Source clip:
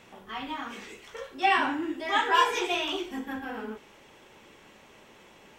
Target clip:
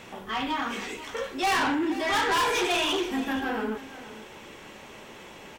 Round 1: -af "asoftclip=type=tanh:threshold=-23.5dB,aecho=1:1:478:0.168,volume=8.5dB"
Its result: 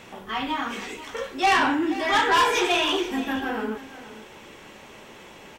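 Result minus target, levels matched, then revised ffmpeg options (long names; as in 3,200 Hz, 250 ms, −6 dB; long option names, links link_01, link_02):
soft clipping: distortion −5 dB
-af "asoftclip=type=tanh:threshold=-30.5dB,aecho=1:1:478:0.168,volume=8.5dB"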